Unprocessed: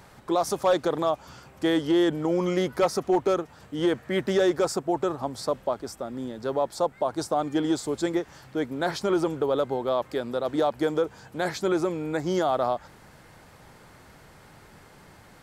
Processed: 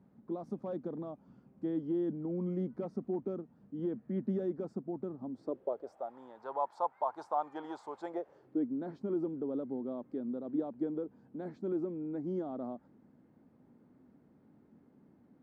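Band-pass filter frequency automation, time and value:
band-pass filter, Q 3.9
5.23 s 220 Hz
6.18 s 920 Hz
7.99 s 920 Hz
8.65 s 250 Hz

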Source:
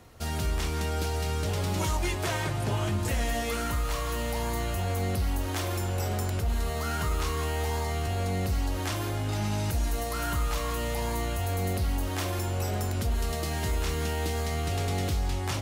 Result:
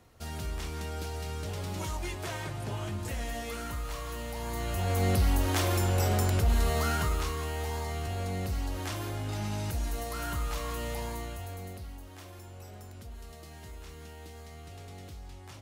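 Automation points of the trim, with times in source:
4.36 s -7 dB
5.09 s +3 dB
6.80 s +3 dB
7.39 s -4.5 dB
10.94 s -4.5 dB
12.04 s -17 dB

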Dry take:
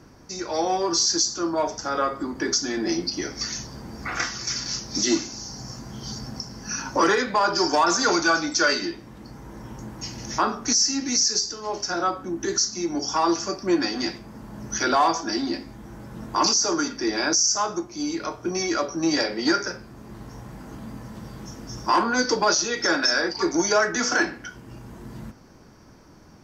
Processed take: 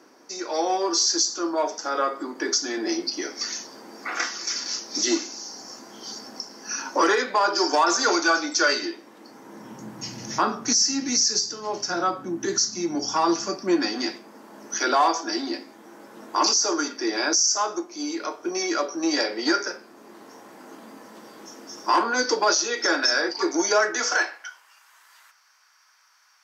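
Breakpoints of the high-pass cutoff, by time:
high-pass 24 dB/octave
9.25 s 290 Hz
10.07 s 120 Hz
13.09 s 120 Hz
14.36 s 290 Hz
23.88 s 290 Hz
24.75 s 1.2 kHz

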